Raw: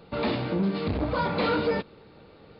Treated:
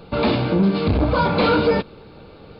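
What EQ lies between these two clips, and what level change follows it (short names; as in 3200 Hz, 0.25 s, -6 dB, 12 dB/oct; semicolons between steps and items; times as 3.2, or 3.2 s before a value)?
low shelf 67 Hz +7.5 dB; notch 1900 Hz, Q 7.8; +8.0 dB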